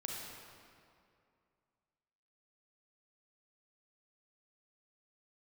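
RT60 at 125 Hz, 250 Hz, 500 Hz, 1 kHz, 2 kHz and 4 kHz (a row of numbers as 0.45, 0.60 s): 2.5, 2.5, 2.5, 2.4, 2.0, 1.6 s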